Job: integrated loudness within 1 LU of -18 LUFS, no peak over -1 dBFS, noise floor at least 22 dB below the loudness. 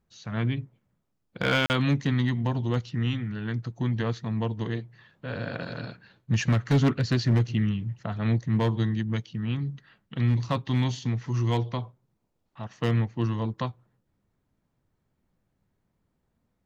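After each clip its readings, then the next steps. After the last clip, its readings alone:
clipped samples 0.4%; clipping level -16.0 dBFS; dropouts 1; longest dropout 39 ms; loudness -27.5 LUFS; peak level -16.0 dBFS; loudness target -18.0 LUFS
-> clip repair -16 dBFS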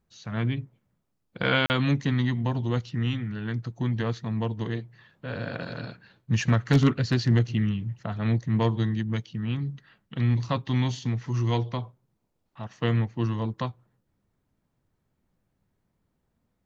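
clipped samples 0.0%; dropouts 1; longest dropout 39 ms
-> interpolate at 1.66 s, 39 ms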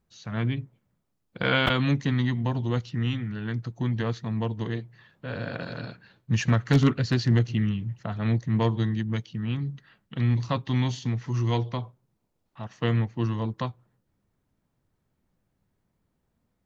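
dropouts 0; loudness -27.5 LUFS; peak level -8.0 dBFS; loudness target -18.0 LUFS
-> trim +9.5 dB; peak limiter -1 dBFS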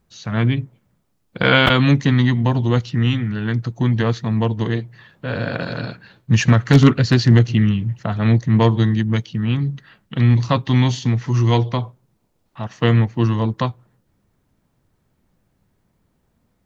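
loudness -18.0 LUFS; peak level -1.0 dBFS; noise floor -67 dBFS

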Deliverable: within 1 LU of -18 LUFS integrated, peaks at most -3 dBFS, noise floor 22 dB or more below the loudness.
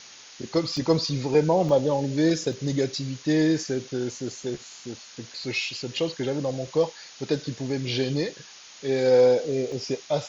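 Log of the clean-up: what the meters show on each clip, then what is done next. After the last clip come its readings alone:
dropouts 4; longest dropout 1.1 ms; noise floor -47 dBFS; noise floor target -48 dBFS; loudness -25.5 LUFS; peak level -7.5 dBFS; loudness target -18.0 LUFS
-> interpolate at 0.77/1.69/2.53/9.72 s, 1.1 ms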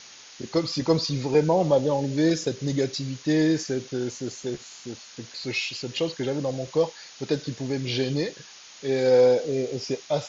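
dropouts 0; noise floor -47 dBFS; noise floor target -48 dBFS
-> noise print and reduce 6 dB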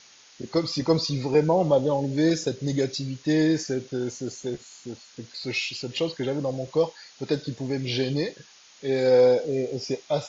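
noise floor -53 dBFS; loudness -25.5 LUFS; peak level -7.5 dBFS; loudness target -18.0 LUFS
-> trim +7.5 dB; peak limiter -3 dBFS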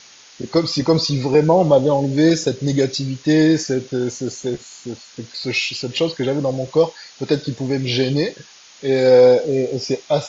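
loudness -18.0 LUFS; peak level -3.0 dBFS; noise floor -45 dBFS

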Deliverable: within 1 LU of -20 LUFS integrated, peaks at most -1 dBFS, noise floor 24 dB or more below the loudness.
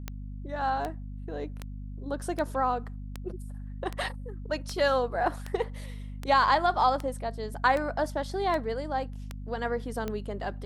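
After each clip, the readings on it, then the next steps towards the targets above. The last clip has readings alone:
clicks found 14; hum 50 Hz; highest harmonic 250 Hz; hum level -36 dBFS; loudness -30.0 LUFS; peak level -10.5 dBFS; loudness target -20.0 LUFS
-> de-click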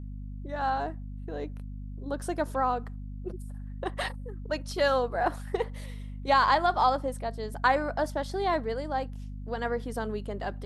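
clicks found 0; hum 50 Hz; highest harmonic 250 Hz; hum level -36 dBFS
-> hum notches 50/100/150/200/250 Hz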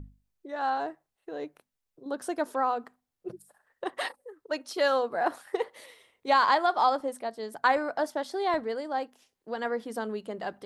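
hum not found; loudness -29.5 LUFS; peak level -11.0 dBFS; loudness target -20.0 LUFS
-> trim +9.5 dB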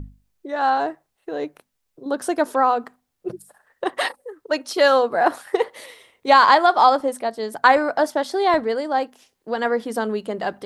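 loudness -20.0 LUFS; peak level -1.5 dBFS; noise floor -75 dBFS

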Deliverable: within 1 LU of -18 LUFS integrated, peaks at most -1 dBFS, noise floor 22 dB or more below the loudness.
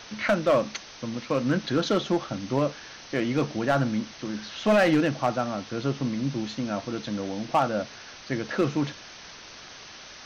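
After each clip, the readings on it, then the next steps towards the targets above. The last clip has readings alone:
clipped samples 0.7%; clipping level -15.0 dBFS; noise floor -45 dBFS; noise floor target -49 dBFS; loudness -27.0 LUFS; peak level -15.0 dBFS; loudness target -18.0 LUFS
-> clip repair -15 dBFS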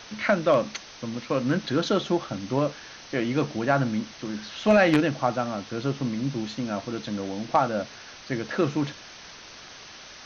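clipped samples 0.0%; noise floor -45 dBFS; noise floor target -49 dBFS
-> noise reduction 6 dB, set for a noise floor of -45 dBFS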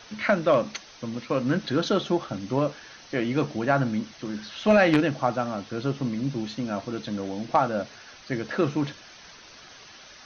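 noise floor -49 dBFS; loudness -26.5 LUFS; peak level -6.0 dBFS; loudness target -18.0 LUFS
-> trim +8.5 dB; peak limiter -1 dBFS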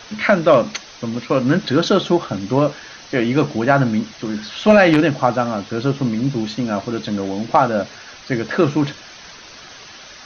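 loudness -18.0 LUFS; peak level -1.0 dBFS; noise floor -40 dBFS

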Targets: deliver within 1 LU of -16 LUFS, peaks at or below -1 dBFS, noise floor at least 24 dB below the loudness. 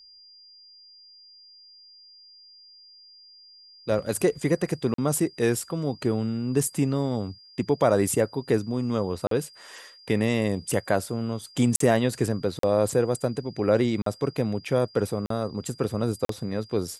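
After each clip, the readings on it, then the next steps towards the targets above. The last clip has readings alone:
dropouts 7; longest dropout 43 ms; steady tone 4.8 kHz; tone level -49 dBFS; loudness -26.0 LUFS; peak level -7.5 dBFS; loudness target -16.0 LUFS
-> interpolate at 4.94/9.27/11.76/12.59/14.02/15.26/16.25 s, 43 ms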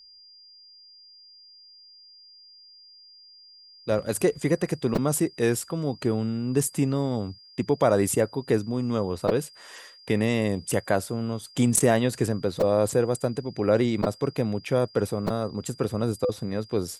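dropouts 0; steady tone 4.8 kHz; tone level -49 dBFS
-> band-stop 4.8 kHz, Q 30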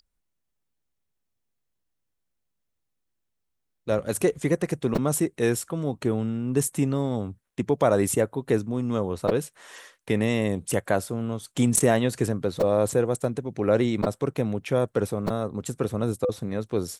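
steady tone not found; loudness -26.0 LUFS; peak level -7.5 dBFS; loudness target -16.0 LUFS
-> trim +10 dB; peak limiter -1 dBFS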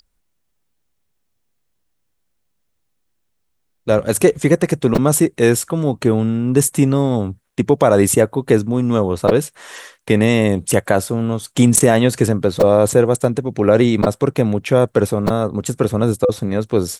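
loudness -16.0 LUFS; peak level -1.0 dBFS; noise floor -68 dBFS

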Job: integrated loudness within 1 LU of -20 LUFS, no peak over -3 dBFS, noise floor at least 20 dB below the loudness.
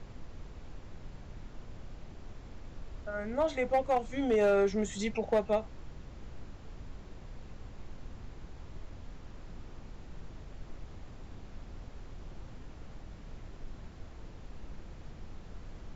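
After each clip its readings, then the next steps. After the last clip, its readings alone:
clipped samples 0.2%; clipping level -21.0 dBFS; noise floor -49 dBFS; noise floor target -51 dBFS; loudness -30.5 LUFS; peak level -21.0 dBFS; loudness target -20.0 LUFS
-> clip repair -21 dBFS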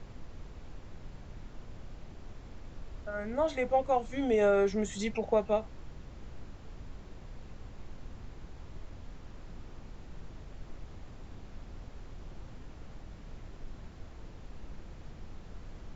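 clipped samples 0.0%; noise floor -49 dBFS; noise floor target -50 dBFS
-> noise print and reduce 6 dB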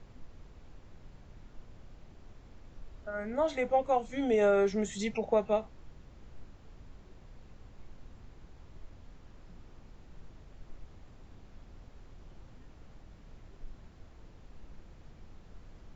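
noise floor -55 dBFS; loudness -30.0 LUFS; peak level -16.5 dBFS; loudness target -20.0 LUFS
-> trim +10 dB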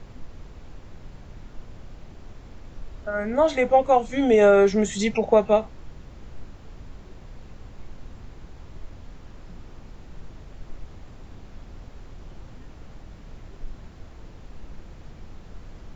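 loudness -20.0 LUFS; peak level -6.5 dBFS; noise floor -45 dBFS

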